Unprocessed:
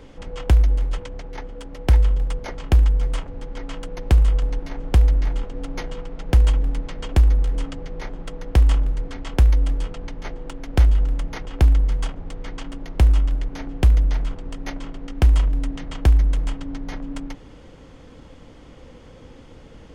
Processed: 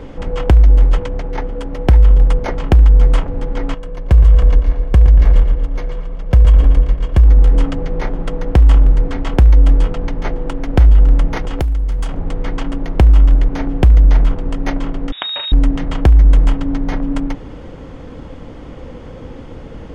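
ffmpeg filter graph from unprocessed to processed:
-filter_complex "[0:a]asettb=1/sr,asplit=3[a][b][c];[a]atrim=end=3.744[d];[b]atrim=start=3.74:end=7.25,asetpts=PTS-STARTPTS,afade=t=in:d=0.004:c=qsin,afade=t=out:st=3.506:d=0.004:c=qsin,aecho=1:1:1.8:0.33,atrim=end_sample=154791,agate=range=-10dB:threshold=-21dB:ratio=16:release=100:detection=peak,asplit=2[e][f];[f]adelay=116,lowpass=f=4.7k:p=1,volume=-7.5dB,asplit=2[g][h];[h]adelay=116,lowpass=f=4.7k:p=1,volume=0.5,asplit=2[i][j];[j]adelay=116,lowpass=f=4.7k:p=1,volume=0.5,asplit=2[k][l];[l]adelay=116,lowpass=f=4.7k:p=1,volume=0.5,asplit=2[m][n];[n]adelay=116,lowpass=f=4.7k:p=1,volume=0.5,asplit=2[o][p];[p]adelay=116,lowpass=f=4.7k:p=1,volume=0.5[q];[e][g][i][k][m][o][q]amix=inputs=7:normalize=0,atrim=end_sample=154791[r];[c]atrim=start=7.246[s];[d][r]acrossfade=d=0.004:c1=hsin:c2=qsin[t];[t][s]acrossfade=d=0.004:c1=qsin:c2=hsin,asettb=1/sr,asplit=3[u][v][w];[u]atrim=end=11.374[x];[v]atrim=start=11.37:end=12.17,asetpts=PTS-STARTPTS,afade=t=in:d=0.004:c=qsin,afade=t=out:st=0.796:d=0.004:c=qsin,aemphasis=mode=production:type=50kf,acompressor=threshold=-27dB:ratio=6:attack=3.2:release=140:knee=1:detection=peak[y];[w]atrim=start=12.166[z];[x][y]acrossfade=d=0.004:c1=hsin:c2=qsin[aa];[aa][z]acrossfade=d=0.004:c1=qsin:c2=hsin,asettb=1/sr,asplit=3[ab][ac][ad];[ab]atrim=end=15.124[ae];[ac]atrim=start=15.12:end=15.52,asetpts=PTS-STARTPTS,afade=t=in:d=0.004:c=qsin,afade=t=out:st=0.396:d=0.004:c=qsin,tiltshelf=f=770:g=-8.5,acompressor=threshold=-25dB:ratio=12:attack=3.2:release=140:knee=1:detection=peak,lowpass=f=3.2k:t=q:w=0.5098,lowpass=f=3.2k:t=q:w=0.6013,lowpass=f=3.2k:t=q:w=0.9,lowpass=f=3.2k:t=q:w=2.563,afreqshift=-3800[af];[ad]atrim=start=15.516[ag];[ae][af]acrossfade=d=0.004:c1=hsin:c2=qsin[ah];[ah][ag]acrossfade=d=0.004:c1=qsin:c2=hsin,highshelf=f=2.7k:g=-11.5,alimiter=level_in=13.5dB:limit=-1dB:release=50:level=0:latency=1,volume=-1dB"

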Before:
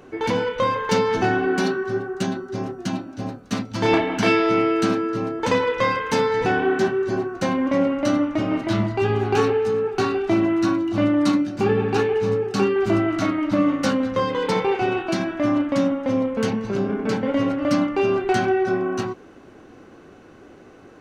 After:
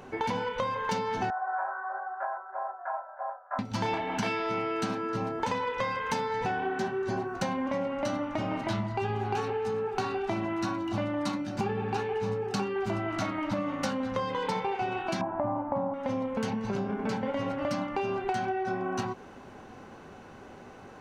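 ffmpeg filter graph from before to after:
-filter_complex "[0:a]asettb=1/sr,asplit=3[a][b][c];[a]atrim=end=1.304[d];[b]atrim=start=1.3:end=3.59,asetpts=PTS-STARTPTS,afade=t=in:d=0.004:c=qsin,afade=t=out:st=2.286:d=0.004:c=qsin,asuperpass=centerf=960:order=12:qfactor=0.87,aecho=1:1:3:0.46,atrim=end_sample=100989[e];[c]atrim=start=3.586[f];[d][e]acrossfade=d=0.004:c1=hsin:c2=qsin[g];[g][f]acrossfade=d=0.004:c1=qsin:c2=hsin,asettb=1/sr,asplit=3[h][i][j];[h]atrim=end=15.214[k];[i]atrim=start=15.21:end=15.94,asetpts=PTS-STARTPTS,afade=t=in:d=0.004:c=qsin,afade=t=out:st=0.726:d=0.004:c=qsin,lowpass=f=890:t=q:w=3.5,equalizer=f=82:t=o:w=1.7:g=6[l];[j]atrim=start=15.936[m];[k][l]acrossfade=d=0.004:c1=hsin:c2=qsin[n];[n][m]acrossfade=d=0.004:c1=qsin:c2=hsin,superequalizer=6b=0.447:7b=0.708:9b=1.78,acompressor=threshold=-28dB:ratio=6"

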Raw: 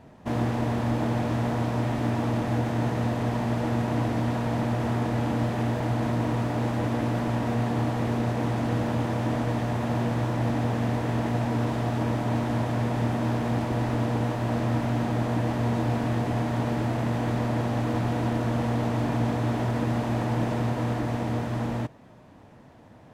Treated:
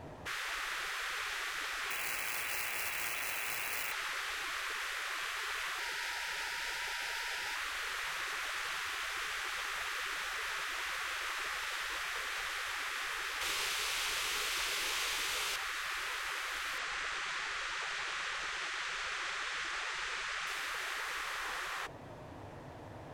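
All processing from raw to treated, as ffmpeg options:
-filter_complex "[0:a]asettb=1/sr,asplit=3[a][b][c];[a]atrim=end=1.904[d];[b]atrim=start=1.9:end=3.92,asetpts=PTS-STARTPTS,afade=t=in:d=0.004:c=qsin,afade=t=out:st=2.016:d=0.004:c=qsin,lowshelf=f=110:g=8.5,lowpass=f=3.3k:t=q:w=0.5098,lowpass=f=3.3k:t=q:w=0.6013,lowpass=f=3.3k:t=q:w=0.9,lowpass=f=3.3k:t=q:w=2.563,afreqshift=-3900,acrusher=bits=5:mode=log:mix=0:aa=0.000001[e];[c]atrim=start=3.916[f];[d][e]acrossfade=d=0.004:c1=hsin:c2=qsin[g];[g][f]acrossfade=d=0.004:c1=qsin:c2=hsin,asettb=1/sr,asplit=3[h][i][j];[h]atrim=end=5.794[k];[i]atrim=start=5.79:end=7.56,asetpts=PTS-STARTPTS,afade=t=in:d=0.004:c=qsin,afade=t=out:st=1.766:d=0.004:c=qsin,asuperstop=centerf=1100:order=4:qfactor=2.1,equalizer=f=5k:t=o:w=0.29:g=4.5[l];[j]atrim=start=7.556[m];[k][l]acrossfade=d=0.004:c1=hsin:c2=qsin[n];[n][m]acrossfade=d=0.004:c1=qsin:c2=hsin,asettb=1/sr,asplit=3[o][p][q];[o]atrim=end=13.414[r];[p]atrim=start=13.41:end=15.56,asetpts=PTS-STARTPTS,afade=t=in:d=0.004:c=qsin,afade=t=out:st=2.146:d=0.004:c=qsin,tiltshelf=f=1.4k:g=-7,bandreject=f=50:t=h:w=6,bandreject=f=100:t=h:w=6,bandreject=f=150:t=h:w=6,asplit=2[s][t];[t]adelay=43,volume=-5dB[u];[s][u]amix=inputs=2:normalize=0,atrim=end_sample=94815[v];[q]atrim=start=15.556[w];[r][v]acrossfade=d=0.004:c1=hsin:c2=qsin[x];[x][w]acrossfade=d=0.004:c1=qsin:c2=hsin,asettb=1/sr,asplit=3[y][z][aa];[y]atrim=end=16.784[ab];[z]atrim=start=16.78:end=20.47,asetpts=PTS-STARTPTS,afade=t=in:d=0.004:c=qsin,afade=t=out:st=3.686:d=0.004:c=qsin,lowpass=f=8.2k:w=0.5412,lowpass=f=8.2k:w=1.3066,equalizer=f=180:t=o:w=0.41:g=-13,aecho=1:1:124:0.0708,atrim=end_sample=162729[ac];[aa]atrim=start=20.466[ad];[ab][ac]acrossfade=d=0.004:c1=hsin:c2=qsin[ae];[ae][ad]acrossfade=d=0.004:c1=qsin:c2=hsin,afftfilt=real='re*lt(hypot(re,im),0.0355)':imag='im*lt(hypot(re,im),0.0355)':win_size=1024:overlap=0.75,equalizer=f=210:t=o:w=0.47:g=-12.5,bandreject=f=60:t=h:w=6,bandreject=f=120:t=h:w=6,bandreject=f=180:t=h:w=6,volume=4.5dB"

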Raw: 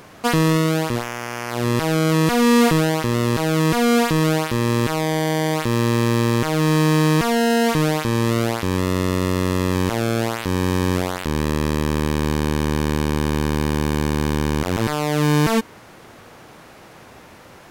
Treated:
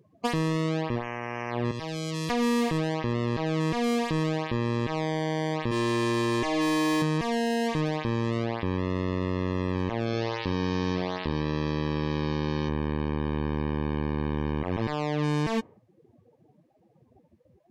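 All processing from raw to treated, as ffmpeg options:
-filter_complex "[0:a]asettb=1/sr,asplit=3[a][b][c];[a]atrim=end=1.714[d];[b]atrim=start=1.71:end=2.3,asetpts=PTS-STARTPTS,afade=t=in:d=0.004:c=qsin,afade=t=out:st=0.586:d=0.004:c=qsin,acrossover=split=150|3000[e][f][g];[f]acompressor=threshold=-25dB:ratio=6:attack=3.2:release=140:knee=2.83:detection=peak[h];[e][h][g]amix=inputs=3:normalize=0,lowshelf=f=220:g=-9[i];[c]atrim=start=2.296[j];[d][i]acrossfade=d=0.004:c1=hsin:c2=qsin[k];[k][j]acrossfade=d=0.004:c1=qsin:c2=hsin,asettb=1/sr,asplit=3[l][m][n];[l]atrim=end=5.714[o];[m]atrim=start=5.71:end=7.02,asetpts=PTS-STARTPTS,afade=t=in:d=0.004:c=qsin,afade=t=out:st=1.306:d=0.004:c=qsin,equalizer=f=89:w=0.31:g=-6,aecho=1:1:2.9:0.86,atrim=end_sample=57771[p];[n]atrim=start=7.016[q];[o][p]acrossfade=d=0.004:c1=hsin:c2=qsin[r];[r][q]acrossfade=d=0.004:c1=qsin:c2=hsin,asettb=1/sr,asplit=3[s][t][u];[s]atrim=end=10.064[v];[t]atrim=start=10.06:end=12.69,asetpts=PTS-STARTPTS,afade=t=in:d=0.004:c=qsin,afade=t=out:st=2.626:d=0.004:c=qsin,acrossover=split=5300[w][x];[x]acompressor=threshold=-55dB:ratio=4:attack=1:release=60[y];[w][y]amix=inputs=2:normalize=0,bass=f=250:g=-1,treble=f=4k:g=11,aecho=1:1:72:0.355,atrim=end_sample=115983[z];[u]atrim=start=12.686[aa];[v][z]acrossfade=d=0.004:c1=hsin:c2=qsin[ab];[ab][aa]acrossfade=d=0.004:c1=qsin:c2=hsin,bandreject=f=1.4k:w=5.8,afftdn=nr=33:nf=-33,acompressor=threshold=-19dB:ratio=6,volume=-3.5dB"

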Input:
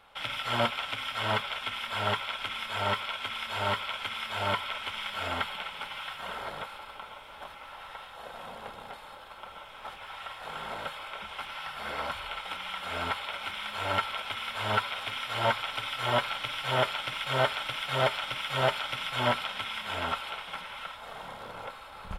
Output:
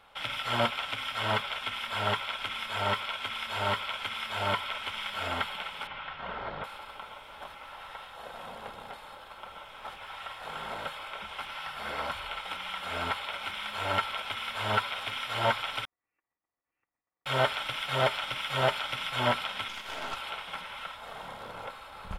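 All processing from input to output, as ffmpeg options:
-filter_complex "[0:a]asettb=1/sr,asplit=3[a][b][c];[a]atrim=end=5.874[d];[b]atrim=start=5.87:end=6.64,asetpts=PTS-STARTPTS,afade=t=in:d=0.004:c=qsin,afade=t=out:st=0.766:d=0.004:c=qsin,lowpass=f=5k:w=0.5412,lowpass=f=5k:w=1.3066,acrossover=split=2700[e][f];[f]acompressor=threshold=-55dB:ratio=4:attack=1:release=60[g];[e][g]amix=inputs=2:normalize=0,lowshelf=f=330:g=5[h];[c]atrim=start=6.636[i];[d][h]acrossfade=d=0.004:c1=hsin:c2=qsin[j];[j][i]acrossfade=d=0.004:c1=qsin:c2=hsin,asettb=1/sr,asplit=3[k][l][m];[k]atrim=end=15.854[n];[l]atrim=start=15.85:end=17.26,asetpts=PTS-STARTPTS,afade=t=in:d=0.004:c=qsin,afade=t=out:st=1.406:d=0.004:c=qsin,aderivative,agate=range=-45dB:threshold=-33dB:ratio=16:release=100:detection=peak,lowpass=f=2.8k:t=q:w=0.5098,lowpass=f=2.8k:t=q:w=0.6013,lowpass=f=2.8k:t=q:w=0.9,lowpass=f=2.8k:t=q:w=2.563,afreqshift=-3300[o];[m]atrim=start=17.256[p];[n][o]acrossfade=d=0.004:c1=hsin:c2=qsin[q];[q][p]acrossfade=d=0.004:c1=qsin:c2=hsin,asettb=1/sr,asplit=3[r][s][t];[r]atrim=end=19.684[u];[s]atrim=start=19.68:end=20.17,asetpts=PTS-STARTPTS,afade=t=in:d=0.004:c=qsin,afade=t=out:st=0.486:d=0.004:c=qsin,highpass=300,highshelf=f=8.2k:g=2.5,aeval=exprs='(tanh(31.6*val(0)+0.75)-tanh(0.75))/31.6':c=same[v];[t]atrim=start=20.166[w];[u][v]acrossfade=d=0.004:c1=hsin:c2=qsin[x];[x][w]acrossfade=d=0.004:c1=qsin:c2=hsin"

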